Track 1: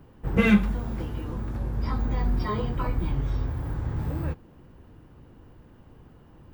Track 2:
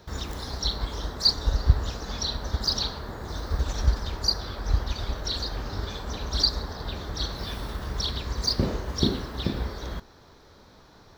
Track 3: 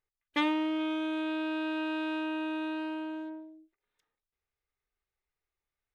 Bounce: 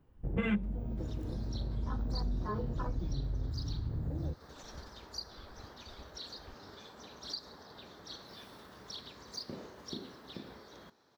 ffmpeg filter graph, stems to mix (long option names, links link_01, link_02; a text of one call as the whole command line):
ffmpeg -i stem1.wav -i stem2.wav -i stem3.wav -filter_complex "[0:a]afwtdn=0.0251,volume=0.5dB[link_01];[1:a]highpass=180,adelay=900,volume=-14.5dB[link_02];[2:a]bandpass=frequency=590:width_type=q:width=1.6:csg=0,volume=-13.5dB[link_03];[link_01][link_02][link_03]amix=inputs=3:normalize=0,acompressor=threshold=-39dB:ratio=2" out.wav